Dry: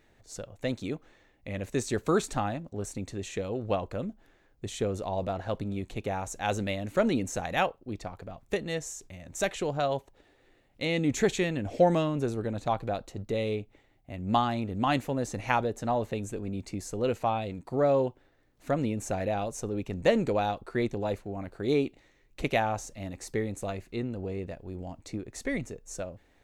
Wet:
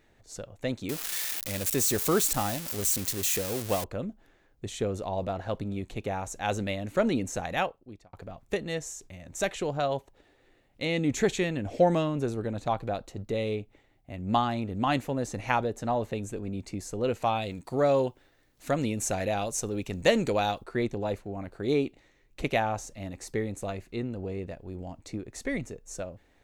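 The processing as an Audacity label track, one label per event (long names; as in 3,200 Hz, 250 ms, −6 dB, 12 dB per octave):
0.890000	3.840000	spike at every zero crossing of −20.5 dBFS
7.500000	8.130000	fade out
17.220000	20.640000	high-shelf EQ 2,400 Hz +10 dB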